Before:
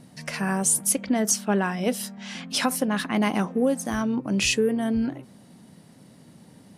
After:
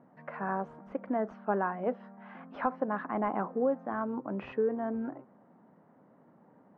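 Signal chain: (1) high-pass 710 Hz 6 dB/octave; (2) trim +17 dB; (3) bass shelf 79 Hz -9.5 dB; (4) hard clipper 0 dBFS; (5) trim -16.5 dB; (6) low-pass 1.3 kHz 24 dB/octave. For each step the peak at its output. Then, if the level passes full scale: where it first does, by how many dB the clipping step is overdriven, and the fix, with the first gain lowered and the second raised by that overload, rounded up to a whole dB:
-9.5 dBFS, +7.5 dBFS, +7.5 dBFS, 0.0 dBFS, -16.5 dBFS, -16.5 dBFS; step 2, 7.5 dB; step 2 +9 dB, step 5 -8.5 dB

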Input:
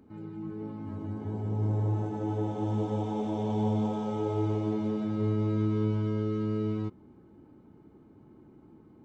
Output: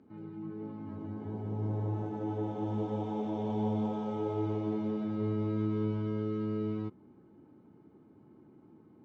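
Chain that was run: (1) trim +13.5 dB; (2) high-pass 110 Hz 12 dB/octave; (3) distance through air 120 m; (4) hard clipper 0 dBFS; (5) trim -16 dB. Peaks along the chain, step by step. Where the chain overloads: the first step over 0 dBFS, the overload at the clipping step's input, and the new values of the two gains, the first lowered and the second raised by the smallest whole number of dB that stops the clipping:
-4.0 dBFS, -4.5 dBFS, -4.5 dBFS, -4.5 dBFS, -20.5 dBFS; nothing clips

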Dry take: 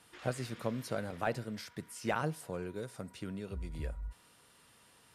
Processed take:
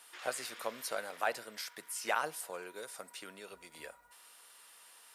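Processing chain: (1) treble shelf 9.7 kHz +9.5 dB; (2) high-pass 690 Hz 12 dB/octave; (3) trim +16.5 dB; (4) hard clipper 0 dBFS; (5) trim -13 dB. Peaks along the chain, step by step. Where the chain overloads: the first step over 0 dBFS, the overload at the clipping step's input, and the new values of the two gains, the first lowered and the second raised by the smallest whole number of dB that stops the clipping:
-19.0 dBFS, -21.0 dBFS, -4.5 dBFS, -4.5 dBFS, -17.5 dBFS; nothing clips

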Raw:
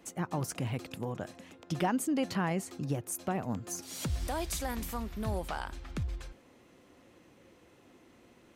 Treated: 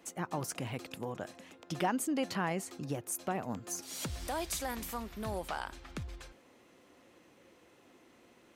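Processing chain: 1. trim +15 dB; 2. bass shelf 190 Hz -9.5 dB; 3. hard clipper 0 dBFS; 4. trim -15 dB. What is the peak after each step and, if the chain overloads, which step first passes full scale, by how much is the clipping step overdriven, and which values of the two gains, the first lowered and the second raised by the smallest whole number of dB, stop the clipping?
-4.5 dBFS, -3.5 dBFS, -3.5 dBFS, -18.5 dBFS; nothing clips

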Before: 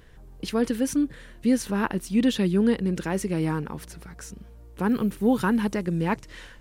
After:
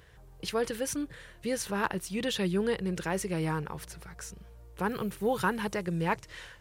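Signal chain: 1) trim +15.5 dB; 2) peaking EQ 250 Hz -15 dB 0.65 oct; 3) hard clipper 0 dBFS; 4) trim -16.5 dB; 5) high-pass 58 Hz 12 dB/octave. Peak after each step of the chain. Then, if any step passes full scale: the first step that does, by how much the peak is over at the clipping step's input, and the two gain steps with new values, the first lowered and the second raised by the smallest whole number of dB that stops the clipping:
+4.5 dBFS, +4.5 dBFS, 0.0 dBFS, -16.5 dBFS, -15.0 dBFS; step 1, 4.5 dB; step 1 +10.5 dB, step 4 -11.5 dB

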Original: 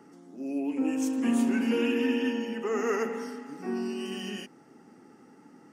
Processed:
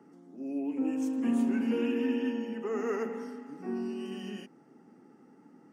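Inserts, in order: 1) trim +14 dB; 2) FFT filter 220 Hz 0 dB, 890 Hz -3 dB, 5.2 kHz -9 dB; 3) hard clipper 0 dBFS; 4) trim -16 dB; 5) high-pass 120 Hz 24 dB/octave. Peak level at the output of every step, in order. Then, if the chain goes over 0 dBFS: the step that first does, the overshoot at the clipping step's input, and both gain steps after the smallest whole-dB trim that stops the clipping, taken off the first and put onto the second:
-1.0 dBFS, -2.0 dBFS, -2.0 dBFS, -18.0 dBFS, -18.5 dBFS; nothing clips

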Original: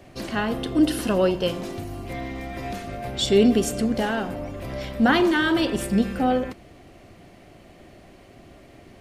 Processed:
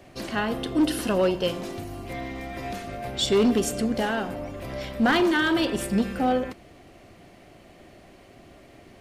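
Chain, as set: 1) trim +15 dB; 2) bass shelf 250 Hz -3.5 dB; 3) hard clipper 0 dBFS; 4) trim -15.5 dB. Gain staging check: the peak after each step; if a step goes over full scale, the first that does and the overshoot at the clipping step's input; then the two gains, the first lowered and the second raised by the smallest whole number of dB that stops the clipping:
+8.5 dBFS, +7.5 dBFS, 0.0 dBFS, -15.5 dBFS; step 1, 7.5 dB; step 1 +7 dB, step 4 -7.5 dB

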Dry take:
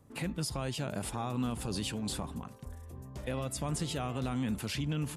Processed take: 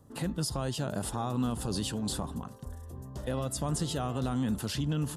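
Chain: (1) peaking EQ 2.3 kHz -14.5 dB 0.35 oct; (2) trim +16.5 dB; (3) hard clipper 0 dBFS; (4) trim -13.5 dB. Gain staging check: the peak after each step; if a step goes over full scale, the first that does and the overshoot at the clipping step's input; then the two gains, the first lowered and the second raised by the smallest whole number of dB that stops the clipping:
-22.5 dBFS, -6.0 dBFS, -6.0 dBFS, -19.5 dBFS; nothing clips

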